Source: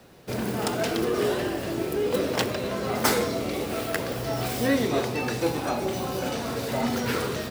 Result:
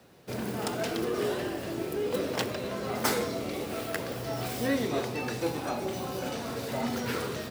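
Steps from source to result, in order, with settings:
high-pass filter 63 Hz
level −5 dB

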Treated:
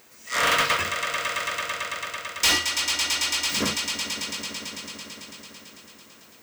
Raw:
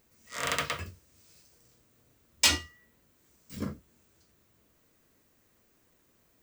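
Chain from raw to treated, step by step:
echo that builds up and dies away 111 ms, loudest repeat 5, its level −17 dB
mid-hump overdrive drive 28 dB, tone 7,600 Hz, clips at −7.5 dBFS
level −4 dB

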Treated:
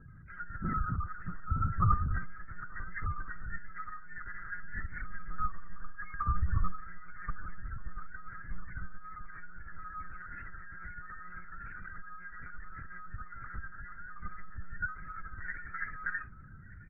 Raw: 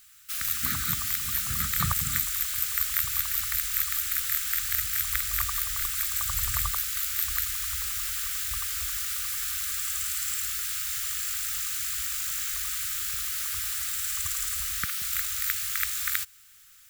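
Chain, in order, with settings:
low-pass filter 1,800 Hz 12 dB per octave
mains-hum notches 60/120/180/240/300/360 Hz
flanger 0.33 Hz, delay 2.4 ms, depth 1.5 ms, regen −17%
spectral peaks only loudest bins 8
mains hum 60 Hz, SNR 19 dB
phase-vocoder pitch shift with formants kept +1 semitone
double-tracking delay 49 ms −12.5 dB
slap from a distant wall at 210 metres, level −13 dB
one-pitch LPC vocoder at 8 kHz 180 Hz
level +11.5 dB

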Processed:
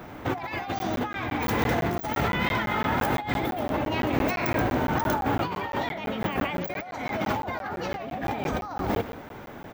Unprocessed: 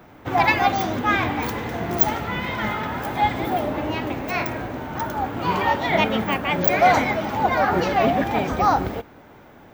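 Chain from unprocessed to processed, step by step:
single-tap delay 129 ms −14 dB
compressor whose output falls as the input rises −29 dBFS, ratio −1
regular buffer underruns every 0.17 s, samples 512, zero, from 0:00.79

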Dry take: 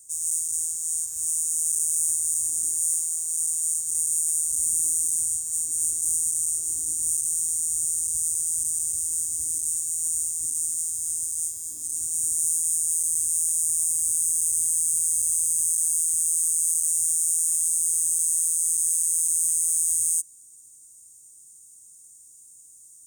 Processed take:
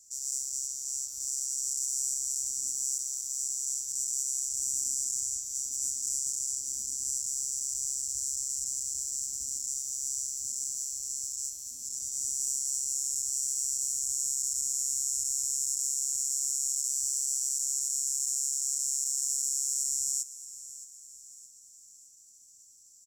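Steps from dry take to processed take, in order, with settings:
pitch shifter −3 semitones
on a send: repeating echo 618 ms, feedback 50%, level −15.5 dB
on the sum: level −7.5 dB

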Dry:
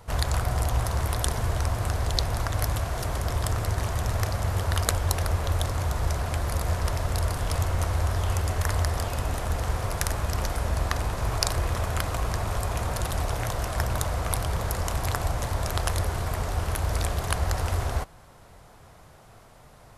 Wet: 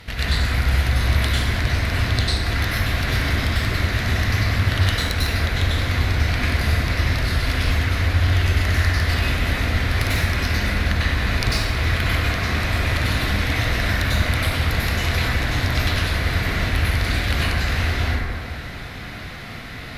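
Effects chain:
octave-band graphic EQ 125/250/500/1,000/2,000/4,000/8,000 Hz −4/+6/−6/−10/+11/+10/−10 dB
downward compressor 6 to 1, threshold −35 dBFS, peak gain reduction 21 dB
harmonic generator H 2 −12 dB, 6 −42 dB, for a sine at −14.5 dBFS
dense smooth reverb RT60 2.2 s, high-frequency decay 0.35×, pre-delay 85 ms, DRR −10 dB
level +7.5 dB

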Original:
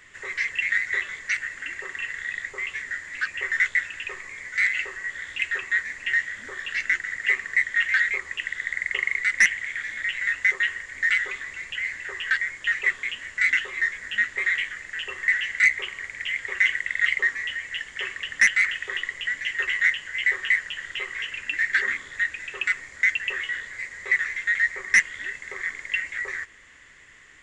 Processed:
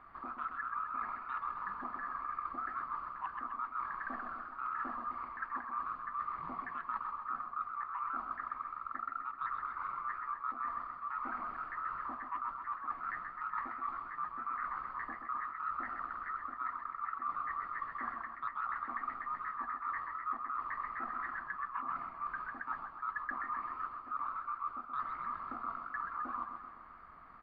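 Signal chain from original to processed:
Bessel low-pass filter 2,600 Hz, order 4
reversed playback
downward compressor 10 to 1, threshold −33 dBFS, peak gain reduction 18.5 dB
reversed playback
pitch shifter −8 semitones
feedback echo with a swinging delay time 129 ms, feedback 58%, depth 85 cents, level −7 dB
level −3 dB

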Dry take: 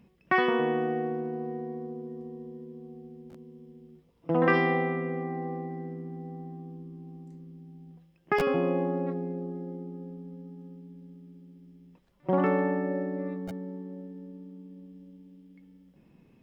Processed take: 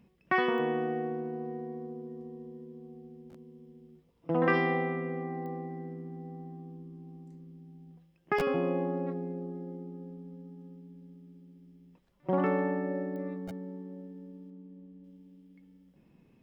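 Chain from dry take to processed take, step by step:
0:14.50–0:15.04: low-pass filter 1,800 Hz 6 dB per octave
digital clicks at 0:00.58/0:05.46/0:13.16, −32 dBFS
level −3 dB

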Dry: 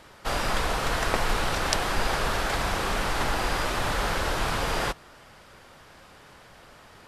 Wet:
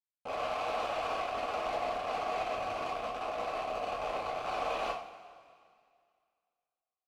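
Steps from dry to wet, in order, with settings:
0:02.42–0:04.47: low-shelf EQ 470 Hz +12 dB
automatic gain control gain up to 10.5 dB
comparator with hysteresis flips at −25.5 dBFS
formant filter a
soft clipping −28.5 dBFS, distortion −11 dB
coupled-rooms reverb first 0.43 s, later 2.2 s, from −16 dB, DRR −3 dB
level −5 dB

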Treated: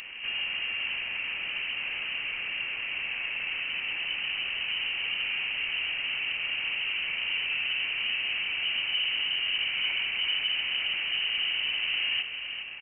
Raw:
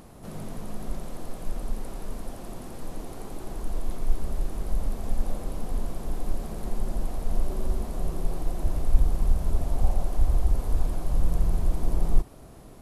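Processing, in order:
high-pass filter 130 Hz 12 dB per octave
in parallel at −11.5 dB: sine wavefolder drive 11 dB, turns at −23.5 dBFS
on the sum: single-tap delay 405 ms −8.5 dB
voice inversion scrambler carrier 3,000 Hz
level +1.5 dB

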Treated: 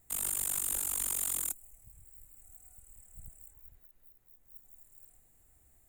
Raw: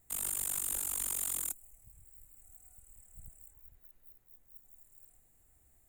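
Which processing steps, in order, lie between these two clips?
0:03.79–0:04.46: downward compressor 2.5 to 1, threshold −58 dBFS, peak gain reduction 5.5 dB
level +2 dB

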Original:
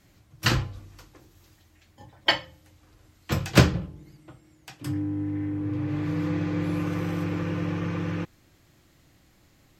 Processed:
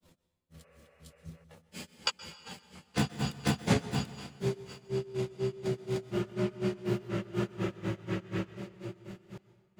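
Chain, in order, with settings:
pitch glide at a constant tempo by +9.5 semitones ending unshifted
feedback delay with all-pass diffusion 1,167 ms, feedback 60%, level −11.5 dB
granular cloud 171 ms, grains 4.1 per second, spray 662 ms, pitch spread up and down by 0 semitones
healed spectral selection 0:00.60–0:01.41, 400–2,900 Hz before
convolution reverb RT60 1.4 s, pre-delay 118 ms, DRR 14.5 dB

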